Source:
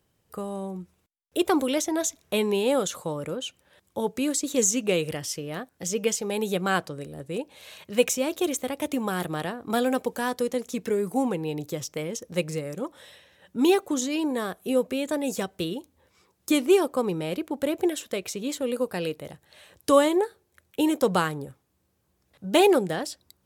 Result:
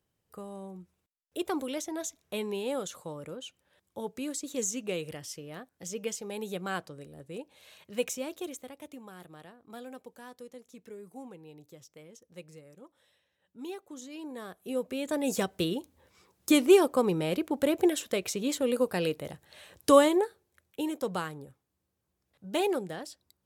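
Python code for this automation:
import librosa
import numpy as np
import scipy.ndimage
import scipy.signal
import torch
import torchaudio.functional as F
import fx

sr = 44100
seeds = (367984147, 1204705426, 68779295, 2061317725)

y = fx.gain(x, sr, db=fx.line((8.22, -9.5), (9.07, -20.0), (13.78, -20.0), (14.91, -7.0), (15.35, 0.0), (19.9, 0.0), (20.91, -10.0)))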